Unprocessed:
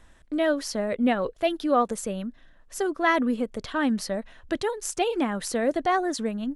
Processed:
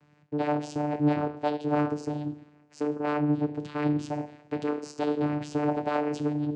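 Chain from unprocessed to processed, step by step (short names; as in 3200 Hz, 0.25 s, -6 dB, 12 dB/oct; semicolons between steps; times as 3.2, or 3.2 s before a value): 2.83–3.33 LPF 1300 Hz 12 dB/oct; two-slope reverb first 0.53 s, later 1.7 s, from -18 dB, DRR 6 dB; one-sided clip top -28 dBFS; vocoder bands 8, saw 148 Hz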